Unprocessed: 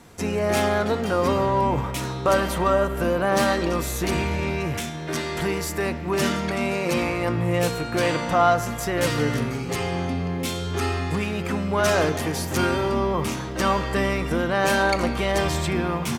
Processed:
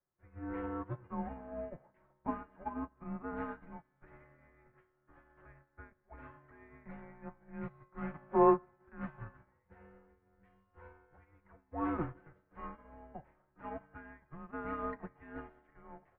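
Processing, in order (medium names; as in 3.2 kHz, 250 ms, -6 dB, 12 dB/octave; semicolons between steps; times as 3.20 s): comb of notches 190 Hz; mistuned SSB -330 Hz 380–2200 Hz; upward expansion 2.5:1, over -38 dBFS; trim -5 dB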